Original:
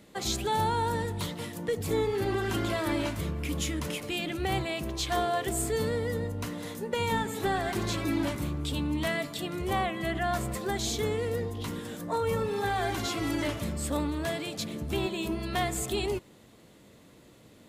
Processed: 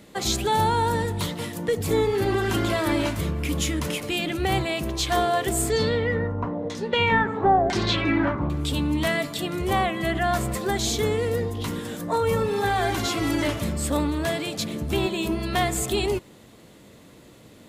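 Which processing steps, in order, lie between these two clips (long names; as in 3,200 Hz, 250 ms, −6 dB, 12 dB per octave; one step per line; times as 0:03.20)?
0:05.70–0:08.50: auto-filter low-pass saw down 1 Hz 520–6,200 Hz
level +6 dB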